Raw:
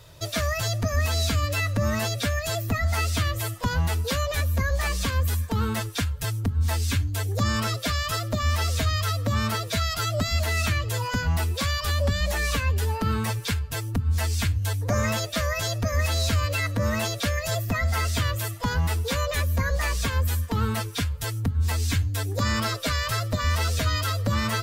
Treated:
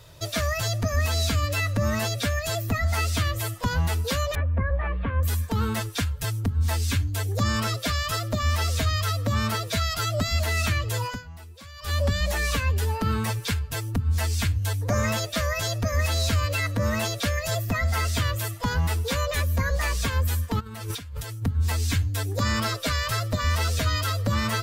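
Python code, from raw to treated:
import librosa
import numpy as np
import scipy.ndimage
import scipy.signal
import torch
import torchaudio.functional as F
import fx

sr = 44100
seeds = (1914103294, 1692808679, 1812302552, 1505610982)

y = fx.bessel_lowpass(x, sr, hz=1500.0, order=8, at=(4.35, 5.23))
y = fx.over_compress(y, sr, threshold_db=-38.0, ratio=-1.0, at=(20.59, 21.41), fade=0.02)
y = fx.edit(y, sr, fx.fade_down_up(start_s=11.06, length_s=0.88, db=-18.5, fade_s=0.22, curve='qua'), tone=tone)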